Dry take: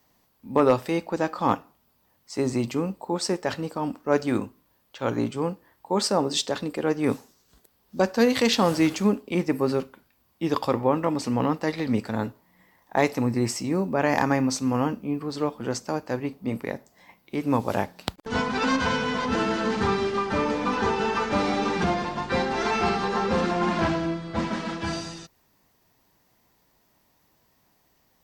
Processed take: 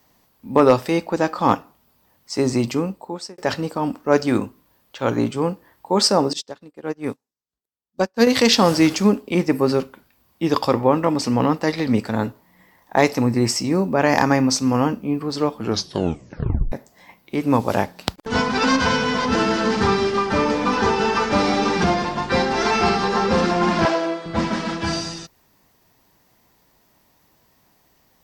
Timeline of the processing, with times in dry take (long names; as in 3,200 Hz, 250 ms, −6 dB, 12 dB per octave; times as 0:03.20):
0:02.72–0:03.38: fade out
0:06.33–0:08.27: expander for the loud parts 2.5 to 1, over −41 dBFS
0:15.56: tape stop 1.16 s
0:23.85–0:24.26: high-pass with resonance 490 Hz, resonance Q 1.7
whole clip: dynamic equaliser 5,200 Hz, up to +6 dB, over −50 dBFS, Q 3.2; level +5.5 dB